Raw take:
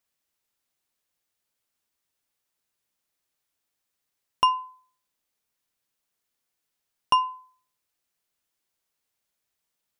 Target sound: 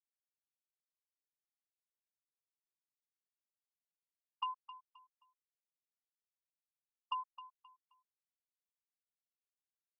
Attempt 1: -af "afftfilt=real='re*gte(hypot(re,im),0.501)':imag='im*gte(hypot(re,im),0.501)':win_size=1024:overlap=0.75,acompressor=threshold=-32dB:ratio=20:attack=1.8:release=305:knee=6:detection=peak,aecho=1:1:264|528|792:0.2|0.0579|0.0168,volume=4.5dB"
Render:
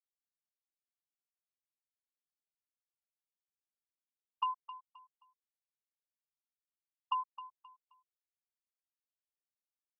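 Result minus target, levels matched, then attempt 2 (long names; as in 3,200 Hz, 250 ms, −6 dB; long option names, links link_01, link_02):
2,000 Hz band −3.0 dB
-af "afftfilt=real='re*gte(hypot(re,im),0.501)':imag='im*gte(hypot(re,im),0.501)':win_size=1024:overlap=0.75,acompressor=threshold=-32dB:ratio=20:attack=1.8:release=305:knee=6:detection=peak,highpass=frequency=1500:poles=1,aecho=1:1:264|528|792:0.2|0.0579|0.0168,volume=4.5dB"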